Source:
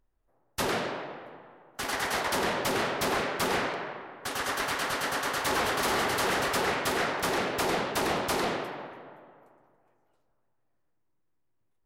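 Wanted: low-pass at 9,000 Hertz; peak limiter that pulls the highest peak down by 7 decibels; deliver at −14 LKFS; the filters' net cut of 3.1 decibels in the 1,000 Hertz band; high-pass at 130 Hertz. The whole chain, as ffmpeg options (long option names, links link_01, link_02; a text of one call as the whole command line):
ffmpeg -i in.wav -af "highpass=130,lowpass=9000,equalizer=frequency=1000:width_type=o:gain=-4,volume=19.5dB,alimiter=limit=-5.5dB:level=0:latency=1" out.wav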